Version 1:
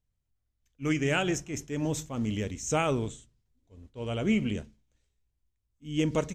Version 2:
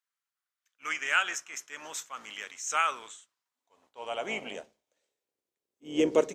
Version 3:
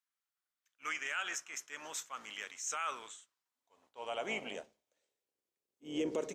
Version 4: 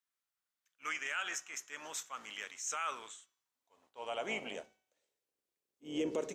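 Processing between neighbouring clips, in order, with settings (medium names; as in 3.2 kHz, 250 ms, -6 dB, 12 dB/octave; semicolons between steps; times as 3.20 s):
octave divider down 2 oct, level +1 dB; hum notches 50/100 Hz; high-pass sweep 1.3 kHz -> 410 Hz, 2.97–5.65 s
peak limiter -23 dBFS, peak gain reduction 11 dB; trim -3.5 dB
de-hum 376.2 Hz, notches 20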